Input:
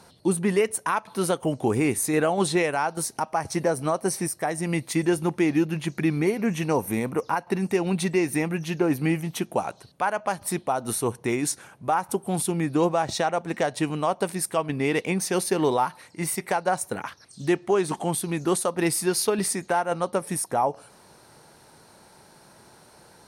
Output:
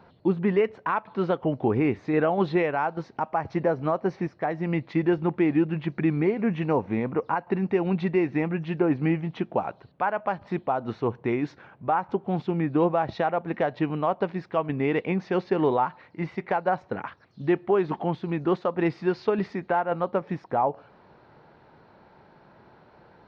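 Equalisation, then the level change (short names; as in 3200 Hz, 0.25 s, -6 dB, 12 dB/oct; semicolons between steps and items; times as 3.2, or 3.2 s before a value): Gaussian blur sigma 3 samples; 0.0 dB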